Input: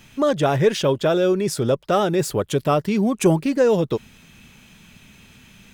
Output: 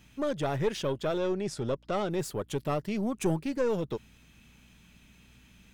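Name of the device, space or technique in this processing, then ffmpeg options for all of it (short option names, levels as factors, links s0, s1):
valve amplifier with mains hum: -filter_complex "[0:a]aeval=exprs='(tanh(3.16*val(0)+0.55)-tanh(0.55))/3.16':c=same,aeval=exprs='val(0)+0.00251*(sin(2*PI*60*n/s)+sin(2*PI*2*60*n/s)/2+sin(2*PI*3*60*n/s)/3+sin(2*PI*4*60*n/s)/4+sin(2*PI*5*60*n/s)/5)':c=same,asettb=1/sr,asplit=3[s0][s1][s2];[s0]atrim=end=1.184[s3];[s1]atrim=start=1.18:end=2.11,asetpts=PTS-STARTPTS,afade=t=in:d=0.004:c=qsin,afade=t=out:st=0.926:d=0.004:c=qsin,lowpass=7800[s4];[s2]atrim=start=2.106[s5];[s3][s4]acrossfade=d=0.004:c1=hsin:c2=qsin[s6];[s6][s5]acrossfade=d=0.004:c1=qsin:c2=hsin,volume=0.376"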